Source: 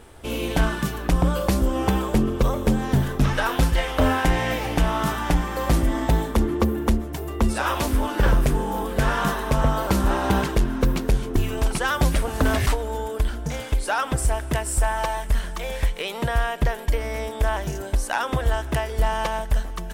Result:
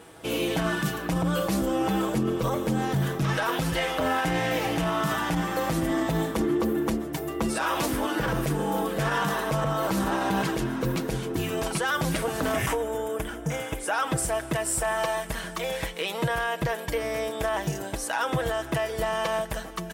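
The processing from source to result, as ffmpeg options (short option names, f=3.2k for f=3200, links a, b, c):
-filter_complex "[0:a]asettb=1/sr,asplit=3[a][b][c];[a]atrim=end=12.534[d];[b]atrim=start=12.53:end=13.94,asetpts=PTS-STARTPTS,afade=t=in:d=0.004:c=qsin,afade=t=out:st=1.406:d=0.004:c=qsin,equalizer=f=4.3k:w=3.3:g=-14.5[e];[c]atrim=start=13.936[f];[d][e]acrossfade=d=0.004:c1=hsin:c2=qsin[g];[g][f]acrossfade=d=0.004:c1=qsin:c2=hsin,highpass=120,aecho=1:1:6.2:0.51,alimiter=limit=-17dB:level=0:latency=1:release=29"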